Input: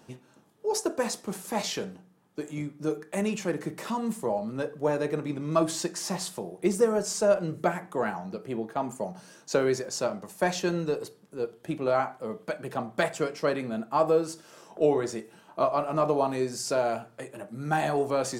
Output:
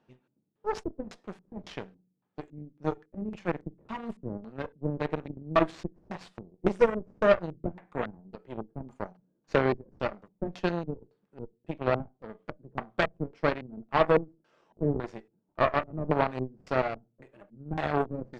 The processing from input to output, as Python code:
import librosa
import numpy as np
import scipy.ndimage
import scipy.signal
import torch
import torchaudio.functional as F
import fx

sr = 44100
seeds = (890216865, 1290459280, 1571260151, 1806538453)

y = fx.cheby_harmonics(x, sr, harmonics=(2, 4, 5, 7), levels_db=(-10, -11, -29, -17), full_scale_db=-10.5)
y = fx.filter_lfo_lowpass(y, sr, shape='square', hz=1.8, low_hz=290.0, high_hz=3000.0, q=0.86)